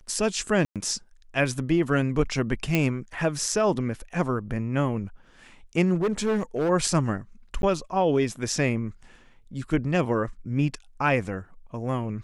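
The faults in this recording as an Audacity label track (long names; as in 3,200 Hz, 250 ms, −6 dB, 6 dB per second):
0.650000	0.760000	drop-out 107 ms
2.750000	2.750000	click −9 dBFS
5.940000	6.700000	clipping −20.5 dBFS
7.620000	7.630000	drop-out 11 ms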